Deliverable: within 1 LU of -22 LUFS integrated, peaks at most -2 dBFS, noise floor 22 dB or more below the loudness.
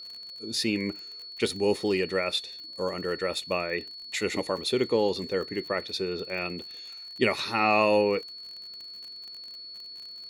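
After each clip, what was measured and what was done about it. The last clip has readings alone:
ticks 43/s; steady tone 4400 Hz; tone level -40 dBFS; loudness -28.0 LUFS; peak -10.0 dBFS; loudness target -22.0 LUFS
-> de-click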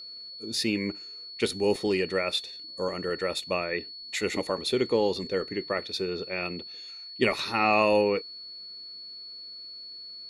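ticks 0/s; steady tone 4400 Hz; tone level -40 dBFS
-> notch 4400 Hz, Q 30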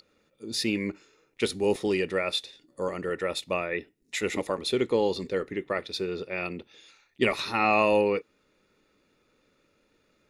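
steady tone none; loudness -28.0 LUFS; peak -10.0 dBFS; loudness target -22.0 LUFS
-> gain +6 dB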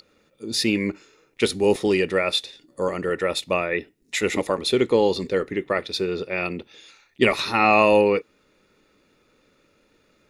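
loudness -22.0 LUFS; peak -4.0 dBFS; noise floor -63 dBFS

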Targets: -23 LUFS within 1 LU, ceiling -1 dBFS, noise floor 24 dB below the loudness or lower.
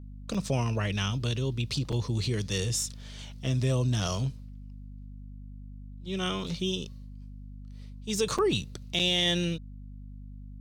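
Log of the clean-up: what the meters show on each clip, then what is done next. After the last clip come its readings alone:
dropouts 4; longest dropout 5.5 ms; hum 50 Hz; harmonics up to 250 Hz; hum level -40 dBFS; loudness -29.5 LUFS; peak -13.5 dBFS; loudness target -23.0 LUFS
-> interpolate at 0.34/1.92/8.38/8.99, 5.5 ms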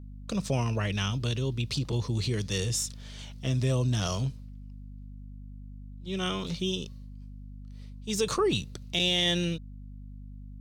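dropouts 0; hum 50 Hz; harmonics up to 250 Hz; hum level -40 dBFS
-> de-hum 50 Hz, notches 5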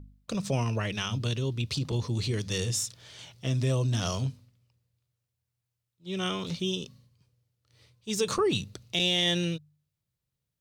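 hum none; loudness -29.5 LUFS; peak -13.5 dBFS; loudness target -23.0 LUFS
-> gain +6.5 dB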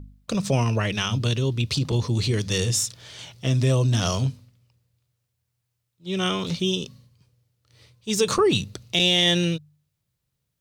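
loudness -23.0 LUFS; peak -7.0 dBFS; noise floor -78 dBFS

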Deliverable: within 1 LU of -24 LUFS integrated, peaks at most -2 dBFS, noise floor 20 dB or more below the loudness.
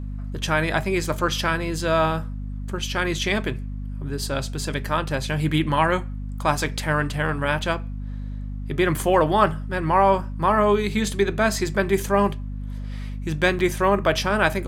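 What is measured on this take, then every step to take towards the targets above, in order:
dropouts 1; longest dropout 1.3 ms; hum 50 Hz; harmonics up to 250 Hz; hum level -28 dBFS; loudness -22.5 LUFS; peak -3.5 dBFS; loudness target -24.0 LUFS
-> interpolate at 13.59, 1.3 ms; de-hum 50 Hz, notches 5; gain -1.5 dB

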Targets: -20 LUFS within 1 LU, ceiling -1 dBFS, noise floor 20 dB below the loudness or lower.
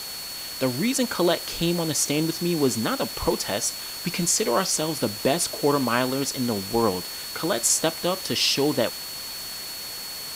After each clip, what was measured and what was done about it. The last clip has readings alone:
steady tone 4400 Hz; tone level -35 dBFS; noise floor -35 dBFS; noise floor target -44 dBFS; loudness -24.0 LUFS; peak -6.0 dBFS; loudness target -20.0 LUFS
-> notch 4400 Hz, Q 30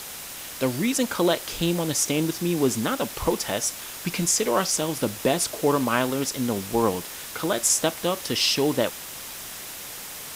steady tone none; noise floor -38 dBFS; noise floor target -45 dBFS
-> denoiser 7 dB, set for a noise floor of -38 dBFS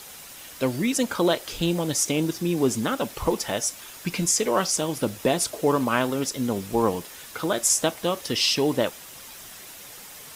noise floor -43 dBFS; noise floor target -45 dBFS
-> denoiser 6 dB, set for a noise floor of -43 dBFS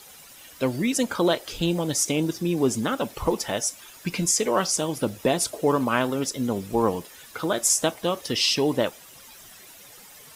noise floor -48 dBFS; loudness -24.5 LUFS; peak -6.5 dBFS; loudness target -20.0 LUFS
-> gain +4.5 dB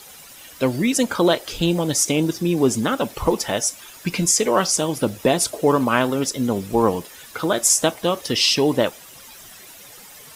loudness -20.0 LUFS; peak -2.0 dBFS; noise floor -43 dBFS

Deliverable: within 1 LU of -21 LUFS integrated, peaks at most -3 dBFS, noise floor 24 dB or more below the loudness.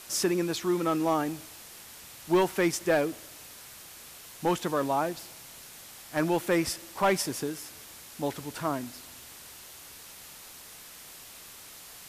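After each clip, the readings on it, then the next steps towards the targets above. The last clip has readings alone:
clipped 0.2%; flat tops at -17.0 dBFS; noise floor -48 dBFS; noise floor target -53 dBFS; loudness -29.0 LUFS; peak -17.0 dBFS; loudness target -21.0 LUFS
-> clip repair -17 dBFS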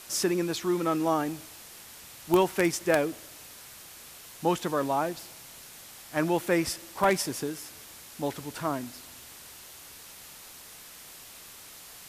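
clipped 0.0%; noise floor -48 dBFS; noise floor target -53 dBFS
-> noise print and reduce 6 dB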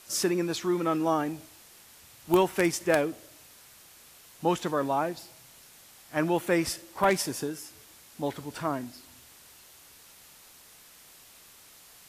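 noise floor -54 dBFS; loudness -28.5 LUFS; peak -8.0 dBFS; loudness target -21.0 LUFS
-> gain +7.5 dB; limiter -3 dBFS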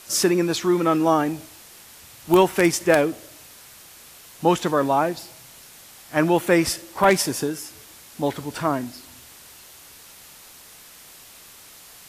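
loudness -21.0 LUFS; peak -3.0 dBFS; noise floor -47 dBFS

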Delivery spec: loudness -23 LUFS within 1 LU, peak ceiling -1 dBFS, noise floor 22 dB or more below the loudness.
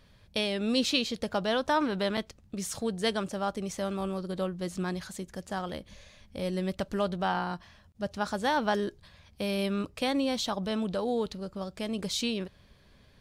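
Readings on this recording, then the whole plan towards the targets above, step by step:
dropouts 1; longest dropout 4.2 ms; loudness -31.5 LUFS; peak -11.5 dBFS; loudness target -23.0 LUFS
-> interpolate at 2.17, 4.2 ms; gain +8.5 dB

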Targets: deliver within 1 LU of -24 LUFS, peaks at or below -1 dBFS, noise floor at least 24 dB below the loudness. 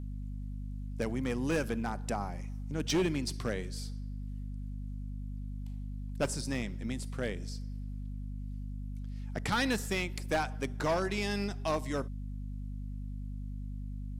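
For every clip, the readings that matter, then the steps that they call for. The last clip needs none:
clipped 0.6%; flat tops at -24.0 dBFS; hum 50 Hz; harmonics up to 250 Hz; hum level -37 dBFS; loudness -36.0 LUFS; peak -24.0 dBFS; loudness target -24.0 LUFS
-> clip repair -24 dBFS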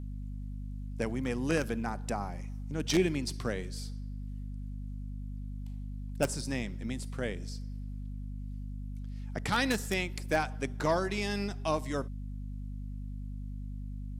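clipped 0.0%; hum 50 Hz; harmonics up to 250 Hz; hum level -36 dBFS
-> notches 50/100/150/200/250 Hz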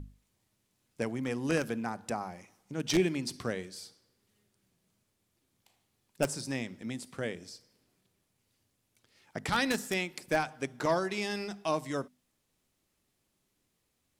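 hum none; loudness -33.5 LUFS; peak -14.0 dBFS; loudness target -24.0 LUFS
-> gain +9.5 dB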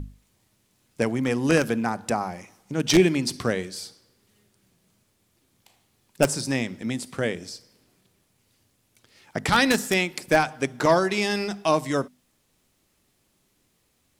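loudness -24.0 LUFS; peak -4.5 dBFS; noise floor -69 dBFS

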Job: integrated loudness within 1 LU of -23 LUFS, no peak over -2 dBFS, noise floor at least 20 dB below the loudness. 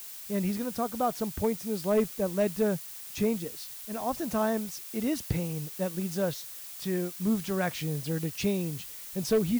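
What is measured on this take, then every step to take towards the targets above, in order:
clipped 0.2%; flat tops at -18.5 dBFS; noise floor -43 dBFS; noise floor target -51 dBFS; loudness -31.0 LUFS; peak -18.5 dBFS; loudness target -23.0 LUFS
-> clip repair -18.5 dBFS; noise print and reduce 8 dB; gain +8 dB

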